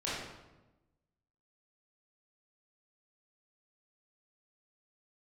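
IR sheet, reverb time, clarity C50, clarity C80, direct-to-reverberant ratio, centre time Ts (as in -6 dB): 1.1 s, -1.5 dB, 2.0 dB, -9.0 dB, 80 ms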